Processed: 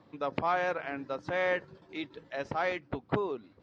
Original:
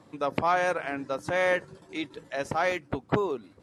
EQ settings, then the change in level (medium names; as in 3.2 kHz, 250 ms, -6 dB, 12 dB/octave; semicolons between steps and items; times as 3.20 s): low-pass 4.9 kHz 24 dB/octave; -4.5 dB